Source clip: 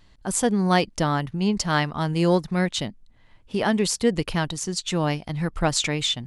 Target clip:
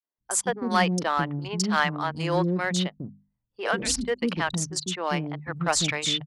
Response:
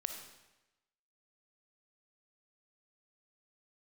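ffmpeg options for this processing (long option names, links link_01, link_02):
-filter_complex "[0:a]asettb=1/sr,asplit=3[link_01][link_02][link_03];[link_01]atrim=end=3.624[link_04];[link_02]atrim=start=3.62:end=4.02,asetpts=PTS-STARTPTS,afade=type=in:duration=0.004:curve=qsin,afade=type=out:start_time=0.396:duration=0.004:curve=qsin,afreqshift=-170[link_05];[link_03]atrim=start=4.016[link_06];[link_04][link_05]acrossfade=duration=0.004:curve1=hsin:curve2=qsin[link_07];[link_07][link_06]acrossfade=duration=0.004:curve1=qsin:curve2=hsin,acrossover=split=380|4000[link_08][link_09][link_10];[link_09]adelay=40[link_11];[link_08]adelay=190[link_12];[link_12][link_11][link_10]amix=inputs=3:normalize=0,anlmdn=15.8,highpass=89,equalizer=frequency=1300:width=0.95:gain=4.5,bandreject=frequency=50:width_type=h:width=6,bandreject=frequency=100:width_type=h:width=6,bandreject=frequency=150:width_type=h:width=6,bandreject=frequency=200:width_type=h:width=6,bandreject=frequency=250:width_type=h:width=6,asplit=2[link_13][link_14];[link_14]asoftclip=type=hard:threshold=-17dB,volume=-8dB[link_15];[link_13][link_15]amix=inputs=2:normalize=0,equalizer=frequency=5500:width=0.39:gain=4,volume=-5.5dB"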